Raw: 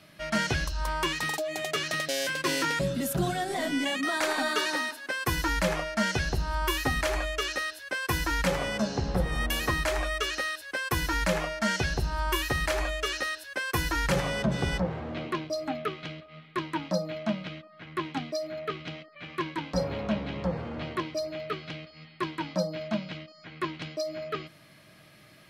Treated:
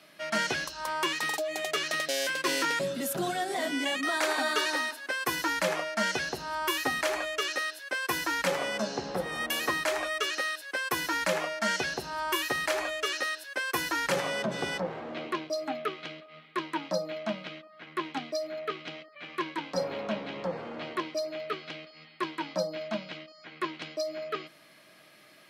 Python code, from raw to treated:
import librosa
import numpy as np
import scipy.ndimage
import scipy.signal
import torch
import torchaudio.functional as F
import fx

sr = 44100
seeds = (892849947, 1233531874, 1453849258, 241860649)

y = scipy.signal.sosfilt(scipy.signal.butter(2, 290.0, 'highpass', fs=sr, output='sos'), x)